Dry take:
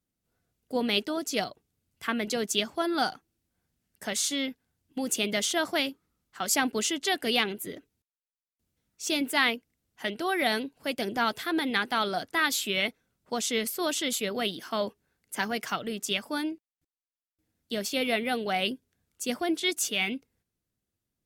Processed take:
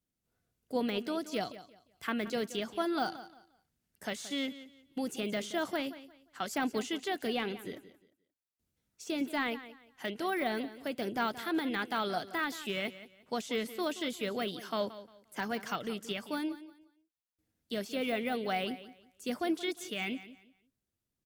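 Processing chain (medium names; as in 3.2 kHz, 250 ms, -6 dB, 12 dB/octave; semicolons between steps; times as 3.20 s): de-esser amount 95%; feedback delay 176 ms, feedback 26%, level -15 dB; trim -3.5 dB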